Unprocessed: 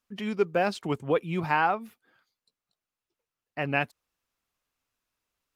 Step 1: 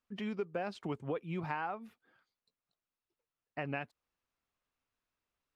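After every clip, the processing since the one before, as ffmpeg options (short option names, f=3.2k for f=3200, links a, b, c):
-af "acompressor=threshold=-31dB:ratio=4,aemphasis=mode=reproduction:type=50kf,volume=-3.5dB"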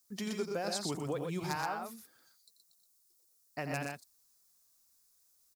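-af "asoftclip=type=hard:threshold=-24dB,aexciter=amount=9.3:drive=7.5:freq=4.3k,aecho=1:1:87.46|122.4:0.355|0.631"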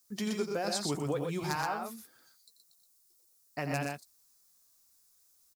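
-filter_complex "[0:a]asplit=2[a][b];[b]adelay=14,volume=-11dB[c];[a][c]amix=inputs=2:normalize=0,volume=2.5dB"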